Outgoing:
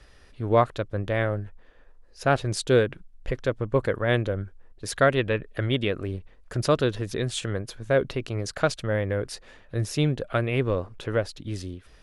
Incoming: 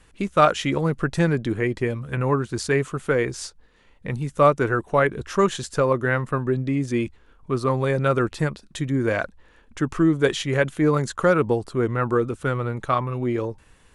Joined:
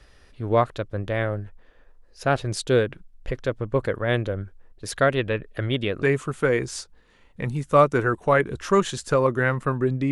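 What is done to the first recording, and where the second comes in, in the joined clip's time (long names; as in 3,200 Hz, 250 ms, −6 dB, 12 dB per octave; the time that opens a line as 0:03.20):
outgoing
0:06.02: continue with incoming from 0:02.68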